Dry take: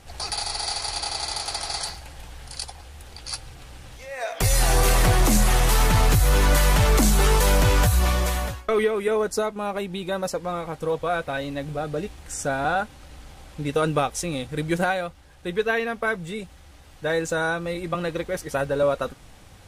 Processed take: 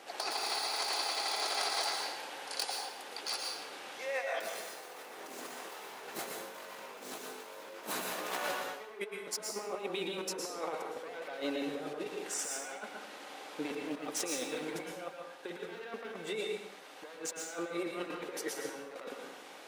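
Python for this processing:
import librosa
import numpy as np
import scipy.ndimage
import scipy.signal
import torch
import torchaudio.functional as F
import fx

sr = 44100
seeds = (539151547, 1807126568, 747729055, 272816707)

y = np.minimum(x, 2.0 * 10.0 ** (-24.0 / 20.0) - x)
y = scipy.signal.sosfilt(scipy.signal.butter(4, 320.0, 'highpass', fs=sr, output='sos'), y)
y = fx.peak_eq(y, sr, hz=10000.0, db=-7.5, octaves=1.8)
y = fx.over_compress(y, sr, threshold_db=-35.0, ratio=-0.5)
y = fx.rev_plate(y, sr, seeds[0], rt60_s=0.7, hf_ratio=1.0, predelay_ms=100, drr_db=1.0)
y = y * 10.0 ** (-5.0 / 20.0)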